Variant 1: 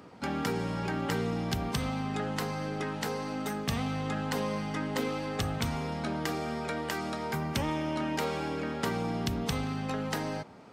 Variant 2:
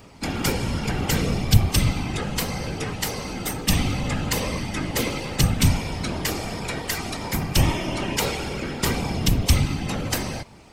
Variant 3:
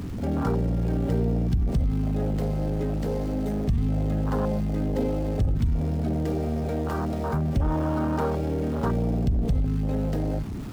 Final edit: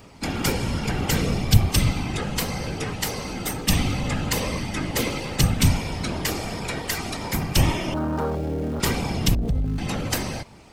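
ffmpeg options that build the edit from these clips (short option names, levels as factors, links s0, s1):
-filter_complex "[2:a]asplit=2[s0][s1];[1:a]asplit=3[s2][s3][s4];[s2]atrim=end=7.942[s5];[s0]atrim=start=7.938:end=8.802[s6];[s3]atrim=start=8.798:end=9.352[s7];[s1]atrim=start=9.348:end=9.782[s8];[s4]atrim=start=9.778[s9];[s5][s6]acrossfade=d=0.004:c1=hsin:c2=hsin[s10];[s10][s7]acrossfade=d=0.004:c1=hsin:c2=hsin[s11];[s11][s8]acrossfade=d=0.004:c1=hsin:c2=hsin[s12];[s12][s9]acrossfade=d=0.004:c1=hsin:c2=hsin"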